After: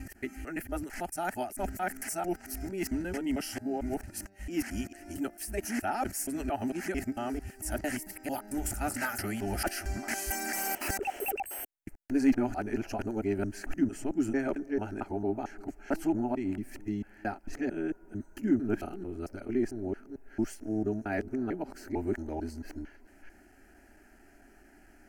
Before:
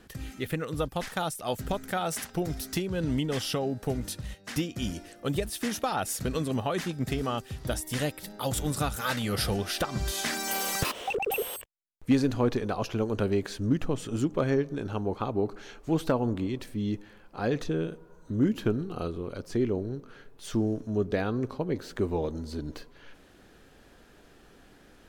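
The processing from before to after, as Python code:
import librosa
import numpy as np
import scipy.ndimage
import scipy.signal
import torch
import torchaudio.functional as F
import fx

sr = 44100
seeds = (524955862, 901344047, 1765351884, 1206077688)

y = fx.local_reverse(x, sr, ms=224.0)
y = fx.fixed_phaser(y, sr, hz=730.0, stages=8)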